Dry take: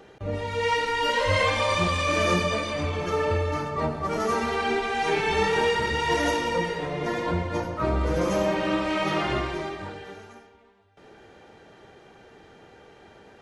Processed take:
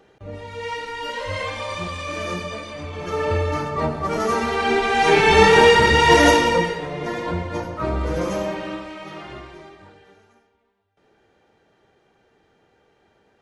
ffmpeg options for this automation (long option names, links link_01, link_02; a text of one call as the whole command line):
ffmpeg -i in.wav -af "volume=11dB,afade=type=in:start_time=2.89:duration=0.5:silence=0.354813,afade=type=in:start_time=4.55:duration=0.86:silence=0.446684,afade=type=out:start_time=6.29:duration=0.52:silence=0.316228,afade=type=out:start_time=8.2:duration=0.75:silence=0.266073" out.wav